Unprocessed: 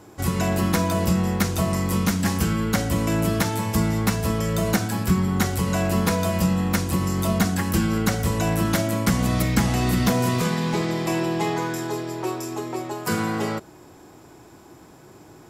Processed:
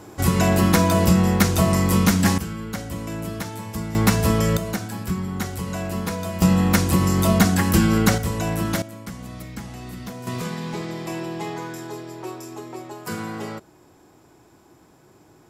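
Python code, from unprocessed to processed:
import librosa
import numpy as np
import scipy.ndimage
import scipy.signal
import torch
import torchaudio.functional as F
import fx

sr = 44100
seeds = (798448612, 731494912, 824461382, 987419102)

y = fx.gain(x, sr, db=fx.steps((0.0, 4.5), (2.38, -8.0), (3.95, 4.5), (4.57, -5.5), (6.42, 4.5), (8.18, -2.0), (8.82, -14.5), (10.27, -6.0)))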